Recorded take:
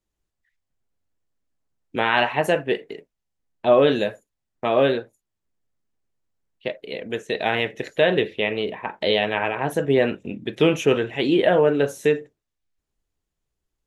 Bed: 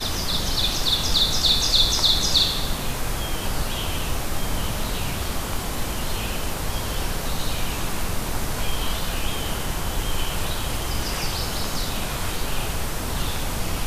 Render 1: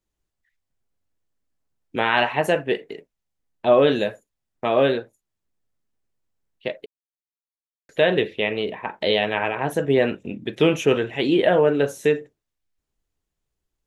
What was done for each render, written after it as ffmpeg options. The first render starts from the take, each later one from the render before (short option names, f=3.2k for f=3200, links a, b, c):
-filter_complex "[0:a]asplit=3[a][b][c];[a]atrim=end=6.86,asetpts=PTS-STARTPTS,afade=t=out:st=6.856:d=0.004:c=hsin[d];[b]atrim=start=6.86:end=7.89,asetpts=PTS-STARTPTS,volume=0[e];[c]atrim=start=7.89,asetpts=PTS-STARTPTS,afade=t=in:d=0.004:c=hsin[f];[d][e][f]concat=n=3:v=0:a=1"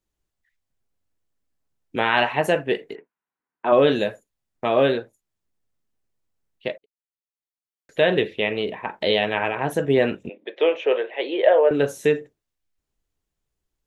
-filter_complex "[0:a]asplit=3[a][b][c];[a]afade=t=out:st=2.94:d=0.02[d];[b]highpass=270,equalizer=f=580:t=q:w=4:g=-9,equalizer=f=1k:t=q:w=4:g=9,equalizer=f=1.5k:t=q:w=4:g=8,lowpass=f=2.5k:w=0.5412,lowpass=f=2.5k:w=1.3066,afade=t=in:st=2.94:d=0.02,afade=t=out:st=3.71:d=0.02[e];[c]afade=t=in:st=3.71:d=0.02[f];[d][e][f]amix=inputs=3:normalize=0,asettb=1/sr,asplit=3[g][h][i];[g]atrim=end=10.294[j];[h]atrim=start=10.29:end=11.71,asetpts=PTS-STARTPTS,afade=t=in:d=0.004:c=qsin,afade=t=out:st=1.416:d=0.004:c=qsin,highpass=f=440:w=0.5412,highpass=f=440:w=1.3066,equalizer=f=550:t=q:w=4:g=6,equalizer=f=1.4k:t=q:w=4:g=-6,equalizer=f=2.7k:t=q:w=4:g=-4,lowpass=f=3.3k:w=0.5412,lowpass=f=3.3k:w=1.3066[k];[i]atrim=start=11.706[l];[j][k]acrossfade=d=0.004:c1=hsin:c2=qsin[m];[m][l]acrossfade=d=0.004:c1=qsin:c2=hsin,asplit=2[n][o];[n]atrim=end=6.78,asetpts=PTS-STARTPTS,afade=t=out:st=6.776:d=0.004:c=hsin[p];[o]atrim=start=6.78,asetpts=PTS-STARTPTS,afade=t=in:d=1.3[q];[p][q]concat=n=2:v=0:a=1"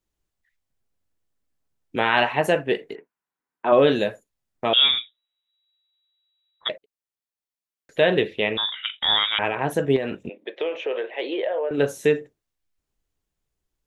-filter_complex "[0:a]asettb=1/sr,asplit=3[a][b][c];[a]atrim=end=4.734[d];[b]atrim=start=4.73:end=6.69,asetpts=PTS-STARTPTS,afade=t=in:d=0.004:c=qsin,afade=t=out:st=1.956:d=0.004:c=qsin,lowpass=f=3.3k:t=q:w=0.5098,lowpass=f=3.3k:t=q:w=0.6013,lowpass=f=3.3k:t=q:w=0.9,lowpass=f=3.3k:t=q:w=2.563,afreqshift=-3900[e];[c]atrim=start=6.686[f];[d][e]acrossfade=d=0.004:c1=hsin:c2=qsin[g];[g][f]acrossfade=d=0.004:c1=qsin:c2=hsin,asettb=1/sr,asplit=3[h][i][j];[h]atrim=end=8.574[k];[i]atrim=start=8.57:end=9.39,asetpts=PTS-STARTPTS,afade=t=in:d=0.004:c=qsin,afade=t=out:st=0.816:d=0.004:c=qsin,lowpass=f=3.3k:t=q:w=0.5098,lowpass=f=3.3k:t=q:w=0.6013,lowpass=f=3.3k:t=q:w=0.9,lowpass=f=3.3k:t=q:w=2.563,afreqshift=-3900[l];[j]atrim=start=9.386[m];[k][l]acrossfade=d=0.004:c1=hsin:c2=qsin[n];[n][m]acrossfade=d=0.004:c1=qsin:c2=hsin,asettb=1/sr,asplit=3[o][p][q];[o]atrim=end=9.964[r];[p]atrim=start=9.96:end=11.78,asetpts=PTS-STARTPTS,afade=t=in:d=0.004:c=qsin,afade=t=out:st=1.816:d=0.004:c=qsin,acompressor=threshold=-22dB:ratio=6:attack=3.2:release=140:knee=1:detection=peak[s];[q]atrim=start=11.776[t];[r][s]acrossfade=d=0.004:c1=hsin:c2=qsin[u];[u][t]acrossfade=d=0.004:c1=qsin:c2=hsin"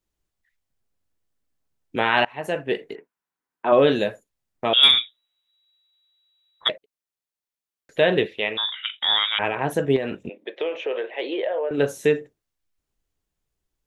-filter_complex "[0:a]asettb=1/sr,asplit=3[a][b][c];[a]atrim=end=4.834[d];[b]atrim=start=4.83:end=6.7,asetpts=PTS-STARTPTS,afade=t=in:d=0.004:c=qsin,afade=t=out:st=1.866:d=0.004:c=qsin,acontrast=41[e];[c]atrim=start=6.696[f];[d][e]acrossfade=d=0.004:c1=hsin:c2=qsin[g];[g][f]acrossfade=d=0.004:c1=qsin:c2=hsin,asettb=1/sr,asplit=3[h][i][j];[h]atrim=end=8.264[k];[i]atrim=start=8.26:end=9.4,asetpts=PTS-STARTPTS,afade=t=in:d=0.004:c=qsin,afade=t=out:st=1.136:d=0.004:c=qsin,lowshelf=f=370:g=-10.5[l];[j]atrim=start=9.396[m];[k][l]acrossfade=d=0.004:c1=hsin:c2=qsin[n];[n][m]acrossfade=d=0.004:c1=qsin:c2=hsin,asplit=2[o][p];[o]atrim=end=2.25,asetpts=PTS-STARTPTS,afade=t=out:st=2.246:d=0.004:c=hsin:silence=0.0707946[q];[p]atrim=start=2.25,asetpts=PTS-STARTPTS,afade=t=in:d=0.57:silence=0.0707946[r];[q][r]concat=n=2:v=0:a=1"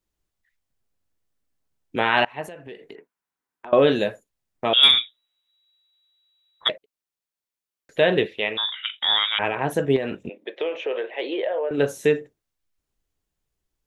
-filter_complex "[0:a]asettb=1/sr,asplit=3[a][b][c];[a]atrim=end=2.474[d];[b]atrim=start=2.47:end=3.73,asetpts=PTS-STARTPTS,afade=t=in:d=0.004:c=qsin,afade=t=out:st=1.256:d=0.004:c=qsin,acompressor=threshold=-37dB:ratio=5:attack=3.2:release=140:knee=1:detection=peak[e];[c]atrim=start=3.726[f];[d][e]acrossfade=d=0.004:c1=hsin:c2=qsin[g];[g][f]acrossfade=d=0.004:c1=qsin:c2=hsin"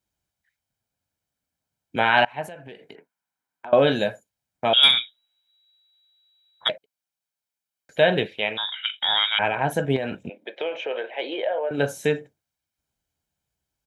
-af "highpass=79,aecho=1:1:1.3:0.45"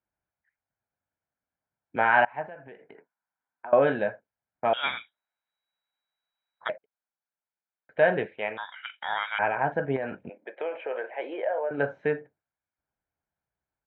-af "lowpass=f=1.9k:w=0.5412,lowpass=f=1.9k:w=1.3066,lowshelf=f=400:g=-9"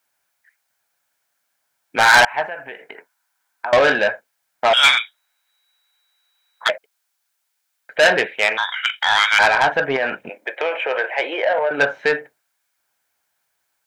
-filter_complex "[0:a]asplit=2[a][b];[b]highpass=f=720:p=1,volume=18dB,asoftclip=type=tanh:threshold=-8dB[c];[a][c]amix=inputs=2:normalize=0,lowpass=f=2.8k:p=1,volume=-6dB,crystalizer=i=8:c=0"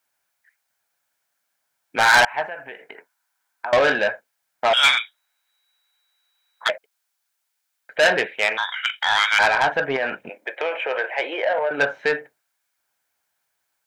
-af "volume=-3dB"